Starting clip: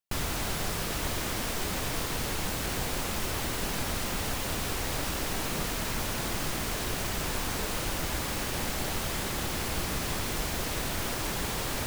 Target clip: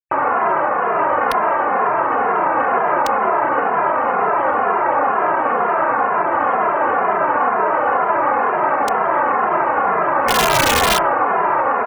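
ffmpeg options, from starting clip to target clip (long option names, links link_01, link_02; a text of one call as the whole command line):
ffmpeg -i in.wav -filter_complex "[0:a]highpass=840,asplit=3[link_01][link_02][link_03];[link_01]afade=type=out:start_time=10.26:duration=0.02[link_04];[link_02]aeval=exprs='0.075*sin(PI/2*1.78*val(0)/0.075)':channel_layout=same,afade=type=in:start_time=10.26:duration=0.02,afade=type=out:start_time=10.98:duration=0.02[link_05];[link_03]afade=type=in:start_time=10.98:duration=0.02[link_06];[link_04][link_05][link_06]amix=inputs=3:normalize=0,lowpass=frequency=1200:width=0.5412,lowpass=frequency=1200:width=1.3066,asplit=2[link_07][link_08];[link_08]aecho=0:1:69|138|207|276:0.355|0.138|0.054|0.021[link_09];[link_07][link_09]amix=inputs=2:normalize=0,afftfilt=real='re*gte(hypot(re,im),0.000631)':imag='im*gte(hypot(re,im),0.000631)':win_size=1024:overlap=0.75,asplit=2[link_10][link_11];[link_11]adelay=32,volume=-9.5dB[link_12];[link_10][link_12]amix=inputs=2:normalize=0,aeval=exprs='(mod(31.6*val(0)+1,2)-1)/31.6':channel_layout=same,alimiter=level_in=35dB:limit=-1dB:release=50:level=0:latency=1,asplit=2[link_13][link_14];[link_14]adelay=2.5,afreqshift=-2.1[link_15];[link_13][link_15]amix=inputs=2:normalize=1,volume=-4dB" out.wav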